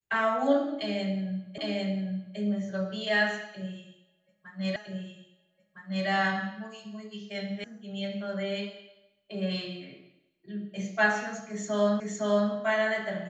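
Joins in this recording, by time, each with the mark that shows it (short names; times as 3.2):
1.58 repeat of the last 0.8 s
4.76 repeat of the last 1.31 s
7.64 sound cut off
12 repeat of the last 0.51 s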